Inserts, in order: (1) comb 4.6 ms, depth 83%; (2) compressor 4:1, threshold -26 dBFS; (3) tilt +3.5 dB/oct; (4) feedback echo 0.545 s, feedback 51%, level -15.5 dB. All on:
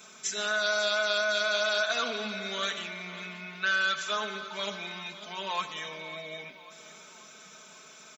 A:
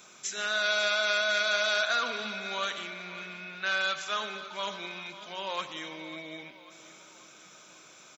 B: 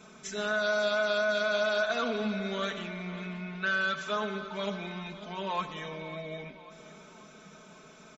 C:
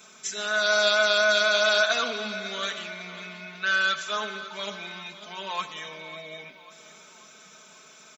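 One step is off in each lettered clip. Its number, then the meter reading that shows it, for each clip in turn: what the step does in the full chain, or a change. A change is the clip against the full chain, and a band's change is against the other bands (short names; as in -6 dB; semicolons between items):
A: 1, 125 Hz band -3.5 dB; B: 3, 125 Hz band +9.0 dB; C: 2, loudness change +5.5 LU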